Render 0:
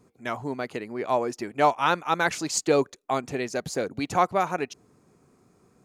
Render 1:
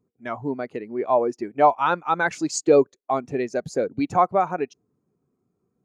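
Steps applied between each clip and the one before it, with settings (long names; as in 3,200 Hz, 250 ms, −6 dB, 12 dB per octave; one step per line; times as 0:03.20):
in parallel at +1 dB: brickwall limiter −17.5 dBFS, peak gain reduction 9.5 dB
on the sum: every bin expanded away from the loudest bin 1.5 to 1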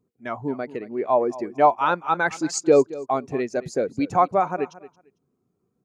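repeating echo 225 ms, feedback 19%, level −17.5 dB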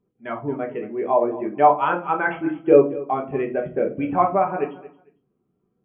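linear-phase brick-wall low-pass 3,400 Hz
rectangular room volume 160 cubic metres, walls furnished, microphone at 1.2 metres
level −1.5 dB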